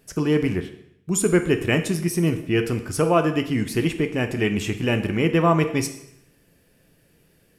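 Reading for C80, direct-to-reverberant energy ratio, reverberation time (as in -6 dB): 13.5 dB, 7.0 dB, 0.75 s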